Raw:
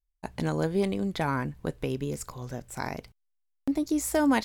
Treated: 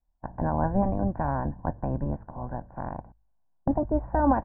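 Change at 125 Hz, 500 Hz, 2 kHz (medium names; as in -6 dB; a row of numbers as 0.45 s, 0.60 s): +3.5 dB, 0.0 dB, -7.0 dB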